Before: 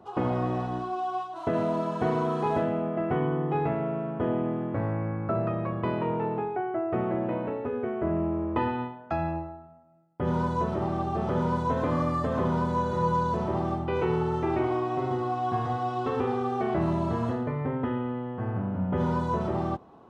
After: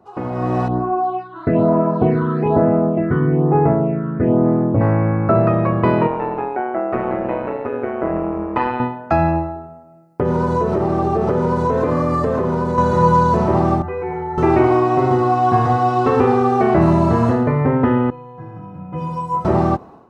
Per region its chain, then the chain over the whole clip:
0.68–4.81 phaser stages 8, 1.1 Hz, lowest notch 700–3800 Hz + air absorption 370 m
6.07–8.8 low shelf 290 Hz -11.5 dB + AM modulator 130 Hz, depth 55%
9.56–12.78 bell 430 Hz +9.5 dB 0.43 oct + compressor, threshold -28 dBFS
13.82–14.38 resonant high shelf 2200 Hz -9.5 dB, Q 1.5 + metallic resonator 89 Hz, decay 0.77 s, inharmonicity 0.008 + fast leveller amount 70%
18.1–19.45 tone controls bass +5 dB, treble +6 dB + metallic resonator 150 Hz, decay 0.52 s, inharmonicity 0.03
whole clip: bell 3300 Hz -10 dB 0.28 oct; AGC gain up to 14.5 dB

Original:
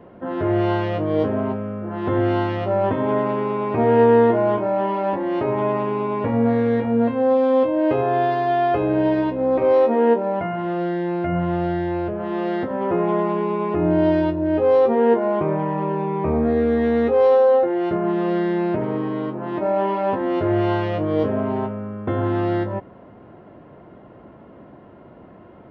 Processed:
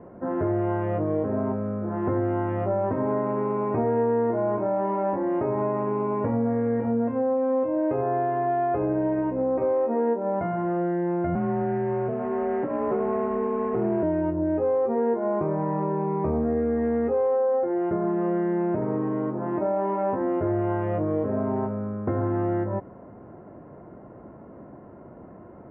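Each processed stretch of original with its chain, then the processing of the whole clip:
11.35–14.03 CVSD 16 kbps + frequency shift +36 Hz + air absorption 170 m
whole clip: Bessel low-pass 1300 Hz, order 8; compressor 4:1, threshold -22 dBFS

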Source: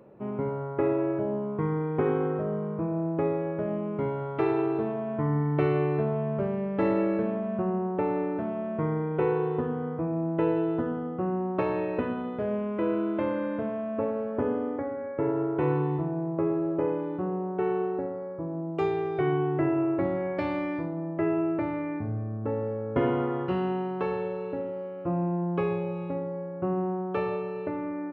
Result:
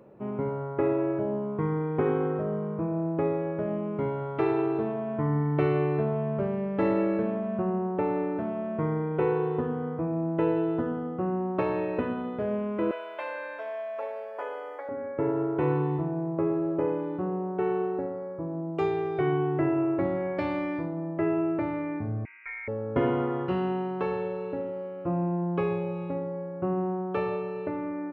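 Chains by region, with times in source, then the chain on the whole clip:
12.91–14.89 HPF 640 Hz 24 dB/oct + high shelf 3400 Hz +8.5 dB + doubler 14 ms -4 dB
22.25–22.68 HPF 770 Hz + inverted band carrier 2700 Hz
whole clip: dry

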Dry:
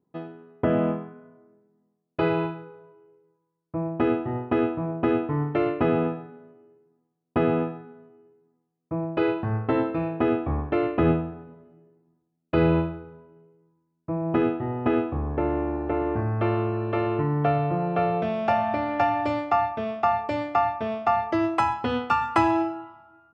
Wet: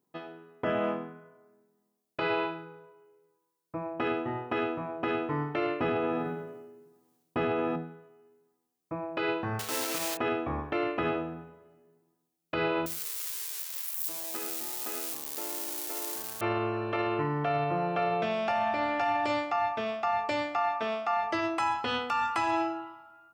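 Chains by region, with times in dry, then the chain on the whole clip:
5.8–7.76 low shelf 400 Hz +7.5 dB + sustainer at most 42 dB/s
9.59–10.19 block floating point 3-bit + low shelf 170 Hz -9.5 dB
12.86–16.41 switching spikes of -17.5 dBFS + HPF 260 Hz
20.58–21.23 HPF 180 Hz + bell 1300 Hz +5 dB 0.24 oct
whole clip: tilt +3 dB/oct; de-hum 81.85 Hz, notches 12; limiter -20 dBFS

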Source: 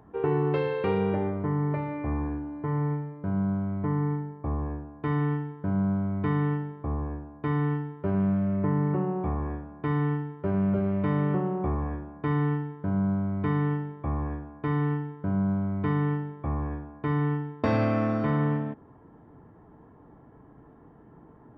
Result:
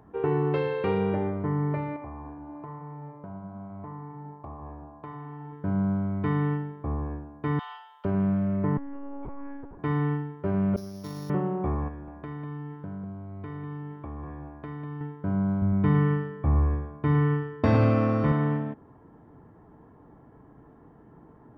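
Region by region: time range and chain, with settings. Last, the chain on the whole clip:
1.96–5.53 band shelf 840 Hz +8.5 dB 1.2 oct + compressor, threshold -32 dBFS + flange 1 Hz, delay 0.9 ms, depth 7.6 ms, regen -78%
7.59–8.05 steep high-pass 710 Hz 48 dB/oct + resonant high shelf 2600 Hz +7 dB, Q 3
8.77–9.79 compressor 12:1, threshold -32 dBFS + monotone LPC vocoder at 8 kHz 280 Hz
10.76–11.3 sample sorter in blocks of 8 samples + expander -17 dBFS + three-band squash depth 70%
11.88–15.01 compressor 5:1, threshold -35 dBFS + echo 0.197 s -8 dB
15.62–18.32 low shelf 150 Hz +10.5 dB + feedback echo 0.107 s, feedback 37%, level -9 dB
whole clip: dry

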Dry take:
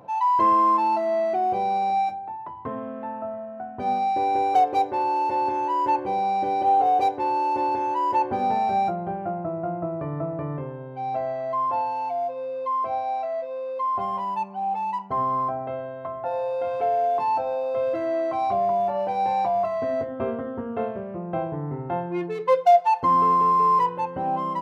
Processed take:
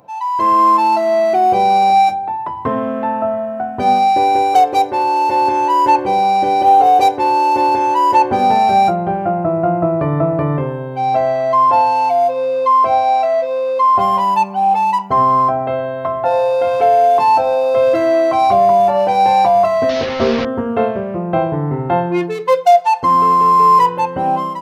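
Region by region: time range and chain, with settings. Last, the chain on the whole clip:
19.89–20.45 delta modulation 32 kbps, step -26.5 dBFS + air absorption 250 m + doubler 13 ms -7.5 dB
whole clip: high shelf 3800 Hz +11 dB; AGC gain up to 15 dB; gain -1 dB

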